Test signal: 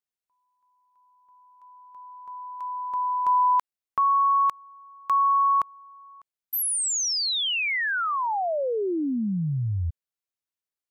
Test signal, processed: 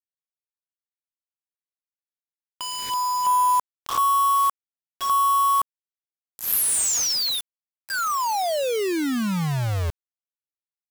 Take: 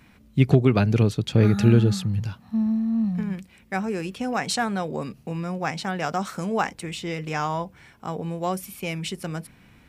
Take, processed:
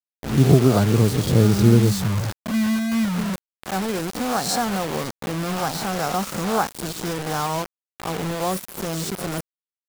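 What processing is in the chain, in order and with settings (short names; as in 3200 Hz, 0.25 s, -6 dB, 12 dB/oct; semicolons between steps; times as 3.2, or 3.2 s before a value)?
spectral swells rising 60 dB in 0.49 s; Butterworth band-stop 2400 Hz, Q 0.89; bit-crush 5-bit; gain +1.5 dB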